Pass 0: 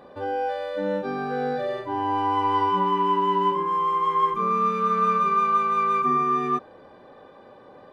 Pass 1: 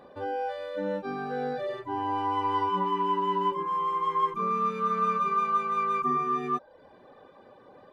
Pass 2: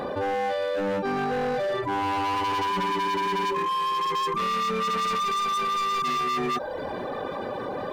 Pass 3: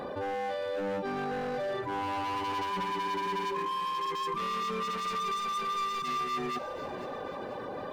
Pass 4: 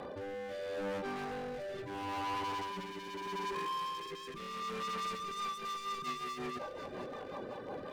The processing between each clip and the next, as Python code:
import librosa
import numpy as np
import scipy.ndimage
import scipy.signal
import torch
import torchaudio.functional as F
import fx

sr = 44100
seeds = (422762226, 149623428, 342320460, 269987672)

y1 = fx.dereverb_blind(x, sr, rt60_s=0.54)
y1 = y1 * librosa.db_to_amplitude(-3.5)
y2 = np.clip(10.0 ** (31.5 / 20.0) * y1, -1.0, 1.0) / 10.0 ** (31.5 / 20.0)
y2 = fx.env_flatten(y2, sr, amount_pct=70)
y2 = y2 * librosa.db_to_amplitude(6.5)
y3 = fx.echo_feedback(y2, sr, ms=491, feedback_pct=45, wet_db=-13.0)
y3 = y3 * librosa.db_to_amplitude(-7.0)
y4 = 10.0 ** (-31.0 / 20.0) * (np.abs((y3 / 10.0 ** (-31.0 / 20.0) + 3.0) % 4.0 - 2.0) - 1.0)
y4 = fx.rotary_switch(y4, sr, hz=0.75, then_hz=5.5, switch_at_s=4.92)
y4 = y4 * librosa.db_to_amplitude(-2.5)